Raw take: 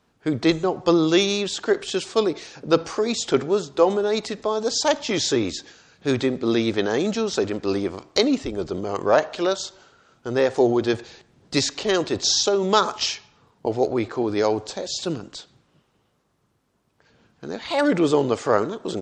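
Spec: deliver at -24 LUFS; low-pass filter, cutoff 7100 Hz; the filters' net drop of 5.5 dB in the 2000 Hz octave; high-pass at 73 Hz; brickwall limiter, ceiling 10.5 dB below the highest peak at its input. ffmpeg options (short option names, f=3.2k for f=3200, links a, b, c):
-af "highpass=73,lowpass=7.1k,equalizer=f=2k:t=o:g=-7.5,volume=1.5dB,alimiter=limit=-13dB:level=0:latency=1"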